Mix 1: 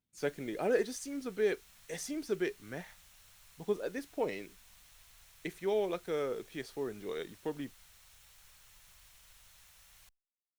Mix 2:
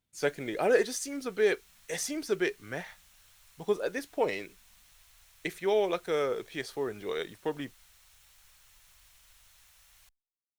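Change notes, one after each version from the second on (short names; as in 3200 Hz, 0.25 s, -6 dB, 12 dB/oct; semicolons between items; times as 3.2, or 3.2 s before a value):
speech +8.0 dB; master: add bell 220 Hz -7 dB 1.8 oct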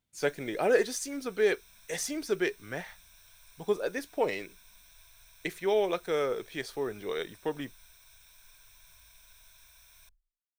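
background: add ripple EQ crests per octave 1.6, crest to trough 13 dB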